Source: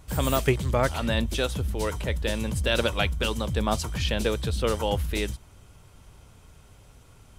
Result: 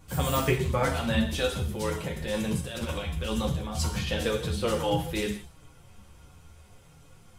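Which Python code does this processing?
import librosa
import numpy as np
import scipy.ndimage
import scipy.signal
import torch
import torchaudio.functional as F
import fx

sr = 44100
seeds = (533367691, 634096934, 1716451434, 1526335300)

y = fx.over_compress(x, sr, threshold_db=-28.0, ratio=-0.5, at=(2.06, 4.07))
y = fx.rev_gated(y, sr, seeds[0], gate_ms=210, shape='falling', drr_db=2.0)
y = fx.chorus_voices(y, sr, voices=6, hz=0.37, base_ms=10, depth_ms=4.5, mix_pct=45)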